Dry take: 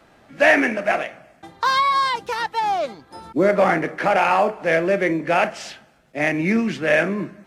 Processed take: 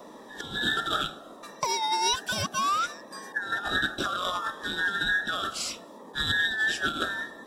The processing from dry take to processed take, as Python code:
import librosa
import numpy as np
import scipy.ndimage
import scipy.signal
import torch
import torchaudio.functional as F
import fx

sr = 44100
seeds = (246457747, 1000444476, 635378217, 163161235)

y = fx.band_invert(x, sr, width_hz=2000)
y = fx.high_shelf(y, sr, hz=3200.0, db=12.0)
y = fx.over_compress(y, sr, threshold_db=-18.0, ratio=-0.5)
y = fx.dmg_noise_band(y, sr, seeds[0], low_hz=200.0, high_hz=1000.0, level_db=-38.0)
y = fx.notch_cascade(y, sr, direction='falling', hz=0.69)
y = y * librosa.db_to_amplitude(-7.0)